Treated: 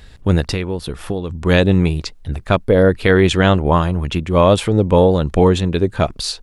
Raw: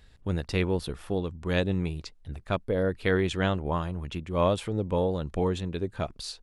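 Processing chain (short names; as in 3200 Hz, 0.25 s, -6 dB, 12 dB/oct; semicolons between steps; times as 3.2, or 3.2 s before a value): 0.51–1.3 compressor 5:1, threshold -34 dBFS, peak gain reduction 12 dB; maximiser +15.5 dB; gain -1 dB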